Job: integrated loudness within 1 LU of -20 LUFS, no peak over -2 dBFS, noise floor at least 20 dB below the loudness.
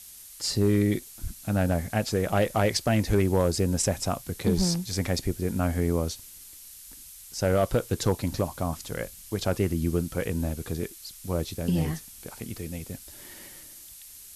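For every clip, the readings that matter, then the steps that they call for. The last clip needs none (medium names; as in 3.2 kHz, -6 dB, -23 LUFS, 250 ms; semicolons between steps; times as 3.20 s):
clipped samples 0.4%; clipping level -15.0 dBFS; noise floor -47 dBFS; noise floor target -48 dBFS; loudness -27.5 LUFS; peak level -15.0 dBFS; loudness target -20.0 LUFS
-> clip repair -15 dBFS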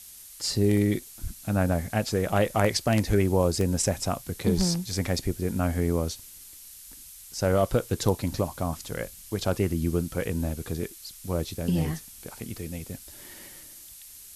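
clipped samples 0.0%; noise floor -47 dBFS; noise floor target -48 dBFS
-> noise reduction 6 dB, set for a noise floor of -47 dBFS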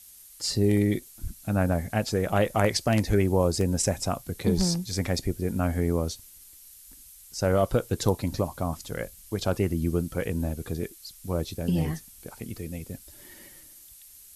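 noise floor -50 dBFS; loudness -27.5 LUFS; peak level -6.0 dBFS; loudness target -20.0 LUFS
-> trim +7.5 dB; peak limiter -2 dBFS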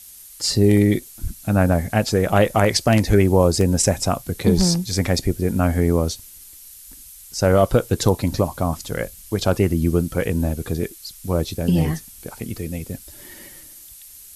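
loudness -20.0 LUFS; peak level -2.0 dBFS; noise floor -43 dBFS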